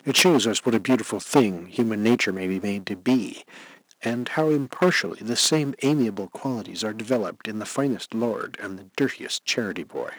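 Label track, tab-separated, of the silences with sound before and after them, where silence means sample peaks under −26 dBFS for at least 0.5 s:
3.320000	4.030000	silence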